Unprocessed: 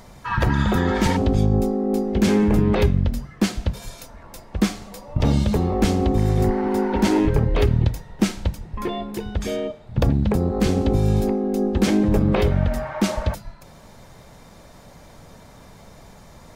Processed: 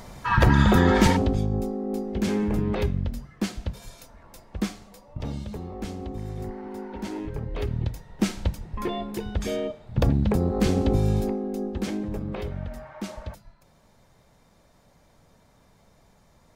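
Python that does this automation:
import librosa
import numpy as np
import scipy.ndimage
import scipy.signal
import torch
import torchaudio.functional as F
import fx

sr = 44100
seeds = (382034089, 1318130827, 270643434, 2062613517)

y = fx.gain(x, sr, db=fx.line((1.02, 2.0), (1.44, -7.5), (4.58, -7.5), (5.42, -15.0), (7.26, -15.0), (8.4, -2.5), (10.94, -2.5), (12.18, -13.5)))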